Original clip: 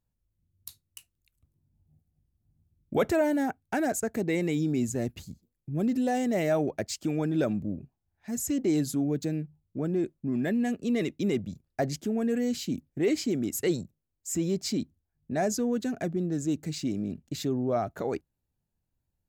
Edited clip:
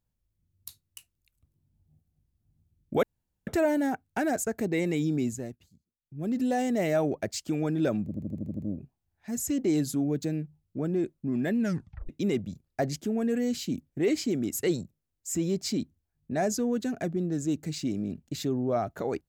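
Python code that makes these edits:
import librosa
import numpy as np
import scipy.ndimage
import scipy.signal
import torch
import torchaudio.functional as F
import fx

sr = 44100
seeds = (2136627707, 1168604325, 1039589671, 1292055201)

y = fx.edit(x, sr, fx.insert_room_tone(at_s=3.03, length_s=0.44),
    fx.fade_down_up(start_s=4.74, length_s=1.25, db=-18.5, fade_s=0.42),
    fx.stutter(start_s=7.59, slice_s=0.08, count=8),
    fx.tape_stop(start_s=10.6, length_s=0.49), tone=tone)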